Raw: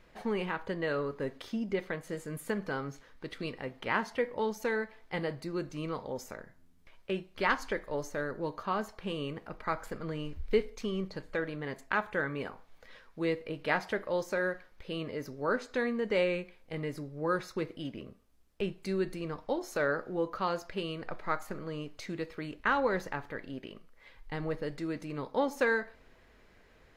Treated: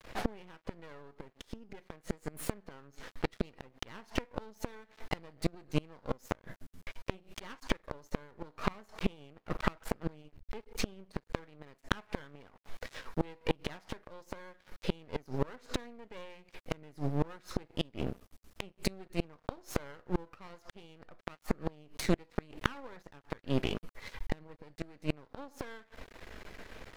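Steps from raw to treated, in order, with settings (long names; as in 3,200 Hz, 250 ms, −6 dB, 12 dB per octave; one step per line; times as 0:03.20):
gate with flip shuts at −29 dBFS, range −30 dB
half-wave rectification
level +15 dB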